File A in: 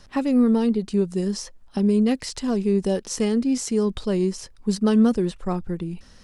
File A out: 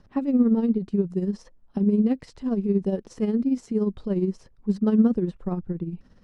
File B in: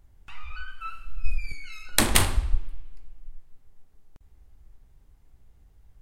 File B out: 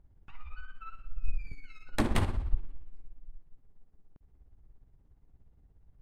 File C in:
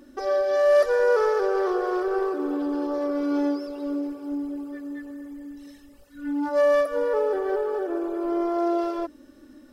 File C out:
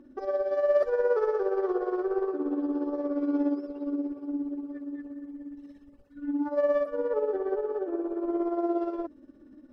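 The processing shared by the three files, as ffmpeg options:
-af "lowpass=f=1.2k:p=1,equalizer=f=190:w=0.5:g=5.5,tremolo=f=17:d=0.57,volume=-4dB"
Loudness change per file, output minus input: -2.0, -9.0, -4.5 LU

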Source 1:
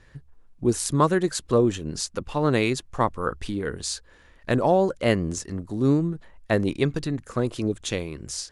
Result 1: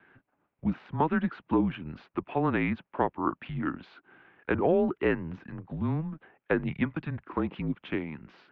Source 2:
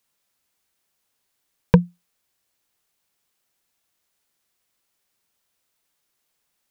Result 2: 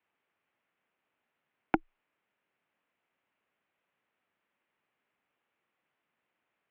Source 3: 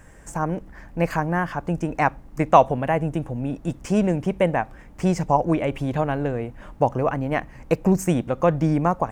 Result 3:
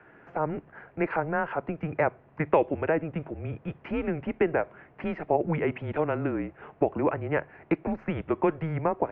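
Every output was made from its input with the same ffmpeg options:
-filter_complex "[0:a]acrossover=split=670|1900[a][b][c];[a]acompressor=threshold=-22dB:ratio=4[d];[b]acompressor=threshold=-27dB:ratio=4[e];[c]acompressor=threshold=-35dB:ratio=4[f];[d][e][f]amix=inputs=3:normalize=0,highpass=220,highpass=f=290:t=q:w=0.5412,highpass=f=290:t=q:w=1.307,lowpass=f=2.9k:t=q:w=0.5176,lowpass=f=2.9k:t=q:w=0.7071,lowpass=f=2.9k:t=q:w=1.932,afreqshift=-160"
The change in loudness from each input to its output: -5.5, -14.5, -6.5 LU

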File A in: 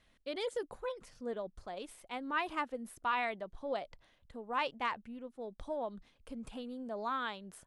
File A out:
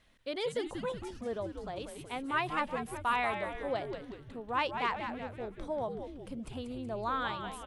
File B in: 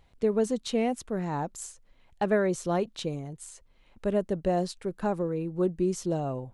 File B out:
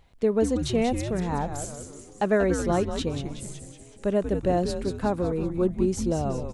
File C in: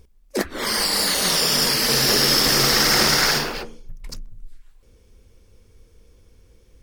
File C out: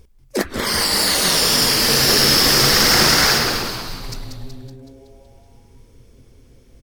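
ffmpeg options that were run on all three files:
-filter_complex "[0:a]asplit=8[a][b][c][d][e][f][g][h];[b]adelay=187,afreqshift=-140,volume=-7dB[i];[c]adelay=374,afreqshift=-280,volume=-12.4dB[j];[d]adelay=561,afreqshift=-420,volume=-17.7dB[k];[e]adelay=748,afreqshift=-560,volume=-23.1dB[l];[f]adelay=935,afreqshift=-700,volume=-28.4dB[m];[g]adelay=1122,afreqshift=-840,volume=-33.8dB[n];[h]adelay=1309,afreqshift=-980,volume=-39.1dB[o];[a][i][j][k][l][m][n][o]amix=inputs=8:normalize=0,volume=2.5dB"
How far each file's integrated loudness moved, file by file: +3.0, +3.0, +3.5 LU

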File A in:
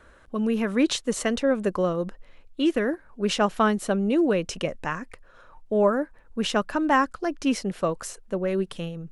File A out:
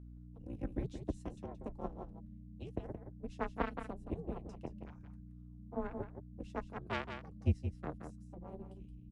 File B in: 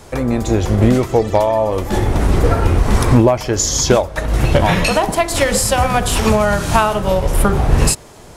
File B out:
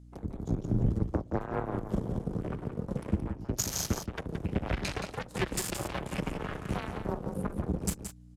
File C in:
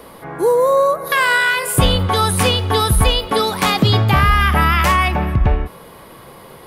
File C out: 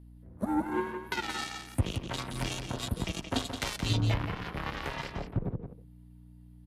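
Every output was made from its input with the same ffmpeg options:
-af "bandreject=f=60:t=h:w=6,bandreject=f=120:t=h:w=6,afwtdn=0.0631,equalizer=f=1.1k:t=o:w=2.5:g=-9,acompressor=threshold=-21dB:ratio=8,flanger=delay=6.1:depth=2.9:regen=49:speed=0.64:shape=triangular,afreqshift=-200,aeval=exprs='0.211*(cos(1*acos(clip(val(0)/0.211,-1,1)))-cos(1*PI/2))+0.0376*(cos(7*acos(clip(val(0)/0.211,-1,1)))-cos(7*PI/2))':c=same,afreqshift=20,aeval=exprs='val(0)+0.00316*(sin(2*PI*60*n/s)+sin(2*PI*2*60*n/s)/2+sin(2*PI*3*60*n/s)/3+sin(2*PI*4*60*n/s)/4+sin(2*PI*5*60*n/s)/5)':c=same,aecho=1:1:173:0.398,aresample=32000,aresample=44100"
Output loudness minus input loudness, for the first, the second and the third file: -18.0, -18.5, -18.5 LU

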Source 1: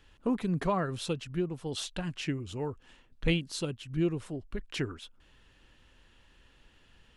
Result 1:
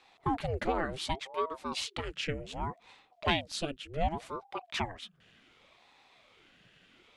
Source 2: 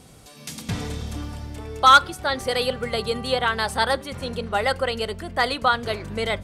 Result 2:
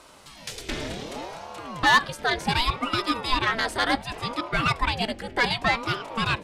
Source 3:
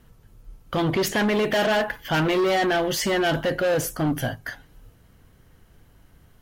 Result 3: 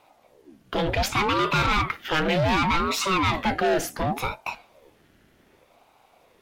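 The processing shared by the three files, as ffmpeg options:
-filter_complex "[0:a]asplit=2[a][b];[b]highpass=f=720:p=1,volume=14dB,asoftclip=type=tanh:threshold=-4dB[c];[a][c]amix=inputs=2:normalize=0,lowpass=f=2.8k:p=1,volume=-6dB,equalizer=f=1k:t=o:w=0.58:g=-12.5,aeval=exprs='val(0)*sin(2*PI*470*n/s+470*0.7/0.67*sin(2*PI*0.67*n/s))':c=same"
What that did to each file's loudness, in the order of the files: -1.5, -2.5, -1.0 LU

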